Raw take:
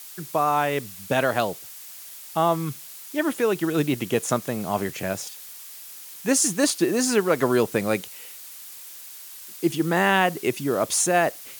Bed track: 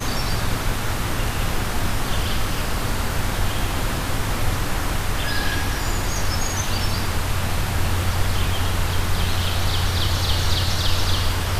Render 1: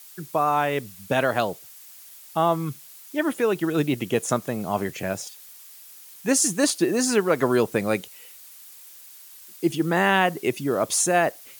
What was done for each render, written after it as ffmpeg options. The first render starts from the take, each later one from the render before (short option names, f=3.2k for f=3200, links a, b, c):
-af "afftdn=nr=6:nf=-42"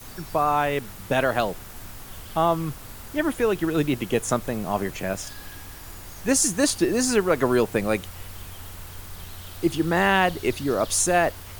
-filter_complex "[1:a]volume=-19dB[a];[0:a][a]amix=inputs=2:normalize=0"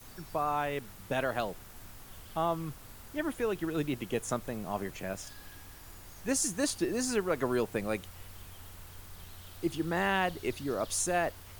-af "volume=-9.5dB"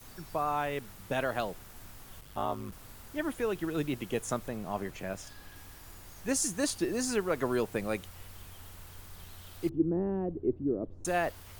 -filter_complex "[0:a]asplit=3[a][b][c];[a]afade=t=out:st=2.2:d=0.02[d];[b]aeval=exprs='val(0)*sin(2*PI*50*n/s)':c=same,afade=t=in:st=2.2:d=0.02,afade=t=out:st=2.71:d=0.02[e];[c]afade=t=in:st=2.71:d=0.02[f];[d][e][f]amix=inputs=3:normalize=0,asettb=1/sr,asplit=3[g][h][i];[g]atrim=end=4.484[j];[h]atrim=start=4.48:end=5.56,asetpts=PTS-STARTPTS,afade=t=in:d=0.004:c=qsin,afade=t=out:st=1.076:d=0.004:c=qsin,highshelf=f=4.9k:g=-4[k];[i]atrim=start=5.556[l];[j][k]acrossfade=d=0.004:c1=hsin:c2=qsin[m];[m][l]acrossfade=d=0.004:c1=qsin:c2=hsin,asettb=1/sr,asplit=3[n][o][p];[n]atrim=end=9.694[q];[o]atrim=start=9.69:end=11.05,asetpts=PTS-STARTPTS,afade=t=in:d=0.004:c=qsin,afade=t=out:st=1.356:d=0.004:c=qsin,lowpass=f=340:t=q:w=2.1[r];[p]atrim=start=11.046[s];[q][r]acrossfade=d=0.004:c1=hsin:c2=qsin[t];[t][s]acrossfade=d=0.004:c1=qsin:c2=hsin"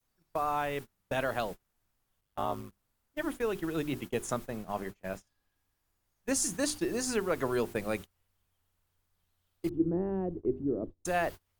-af "bandreject=f=50:t=h:w=6,bandreject=f=100:t=h:w=6,bandreject=f=150:t=h:w=6,bandreject=f=200:t=h:w=6,bandreject=f=250:t=h:w=6,bandreject=f=300:t=h:w=6,bandreject=f=350:t=h:w=6,bandreject=f=400:t=h:w=6,agate=range=-29dB:threshold=-38dB:ratio=16:detection=peak"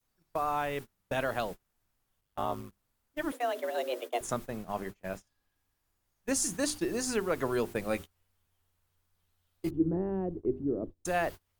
-filter_complex "[0:a]asettb=1/sr,asplit=3[a][b][c];[a]atrim=end=3.324[d];[b]atrim=start=3.32:end=4.21,asetpts=PTS-STARTPTS,afade=t=in:d=0.004:c=qsin,afade=t=out:st=0.886:d=0.004:c=qsin,afreqshift=240[e];[c]atrim=start=4.206[f];[d][e]acrossfade=d=0.004:c1=hsin:c2=qsin[g];[g][f]acrossfade=d=0.004:c1=qsin:c2=hsin,asettb=1/sr,asplit=3[h][i][j];[h]atrim=end=7.894[k];[i]atrim=start=7.89:end=9.97,asetpts=PTS-STARTPTS,afade=t=in:d=0.004:c=qsin,afade=t=out:st=2.076:d=0.004:c=qsin,asplit=2[l][m];[m]adelay=13,volume=-7dB[n];[l][n]amix=inputs=2:normalize=0,atrim=end_sample=91728[o];[j]atrim=start=9.966[p];[k][o]acrossfade=d=0.004:c1=hsin:c2=qsin[q];[q][p]acrossfade=d=0.004:c1=qsin:c2=hsin"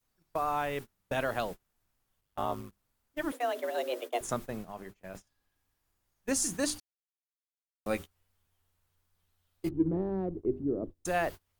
-filter_complex "[0:a]asettb=1/sr,asplit=3[a][b][c];[a]atrim=end=4.654[d];[b]atrim=start=4.65:end=5.15,asetpts=PTS-STARTPTS,afade=t=in:d=0.004:c=qsin,afade=t=out:st=0.496:d=0.004:c=qsin,acompressor=threshold=-52dB:ratio=1.5:attack=3.2:release=140:knee=1:detection=peak[e];[c]atrim=start=5.146[f];[d][e]acrossfade=d=0.004:c1=hsin:c2=qsin[g];[g][f]acrossfade=d=0.004:c1=qsin:c2=hsin,asplit=3[h][i][j];[h]afade=t=out:st=9.68:d=0.02[k];[i]adynamicsmooth=sensitivity=7:basefreq=1.9k,afade=t=in:st=9.68:d=0.02,afade=t=out:st=10.33:d=0.02[l];[j]afade=t=in:st=10.33:d=0.02[m];[k][l][m]amix=inputs=3:normalize=0,asplit=3[n][o][p];[n]atrim=end=6.8,asetpts=PTS-STARTPTS,afade=t=out:st=6.796:d=0.004:c=hsin[q];[o]atrim=start=6.8:end=7.86,asetpts=PTS-STARTPTS,volume=0[r];[p]atrim=start=7.86,asetpts=PTS-STARTPTS,afade=t=in:d=0.004:c=hsin[s];[q][r][s]concat=n=3:v=0:a=1"